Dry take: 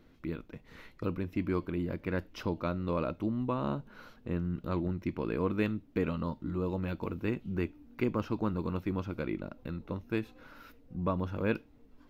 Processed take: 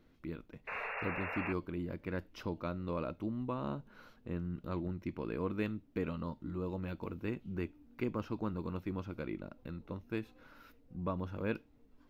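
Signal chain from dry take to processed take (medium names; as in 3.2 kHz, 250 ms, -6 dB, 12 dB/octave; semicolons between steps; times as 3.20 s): painted sound noise, 0.67–1.53 s, 400–2800 Hz -35 dBFS; trim -5.5 dB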